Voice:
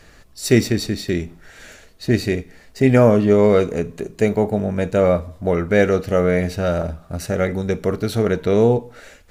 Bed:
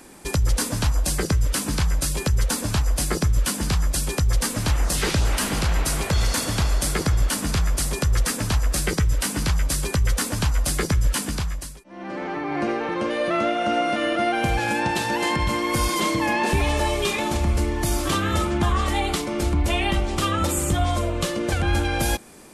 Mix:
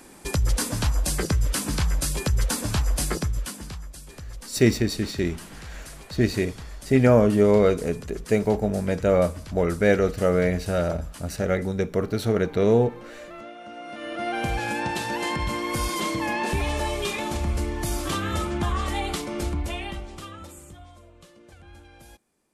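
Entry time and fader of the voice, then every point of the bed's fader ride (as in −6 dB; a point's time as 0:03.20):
4.10 s, −4.0 dB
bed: 0:03.07 −2 dB
0:03.94 −18.5 dB
0:13.75 −18.5 dB
0:14.36 −4.5 dB
0:19.43 −4.5 dB
0:20.94 −26.5 dB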